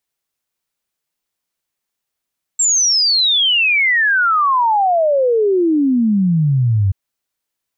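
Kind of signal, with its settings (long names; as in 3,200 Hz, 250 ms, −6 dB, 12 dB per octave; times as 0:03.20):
exponential sine sweep 7,600 Hz → 93 Hz 4.33 s −11 dBFS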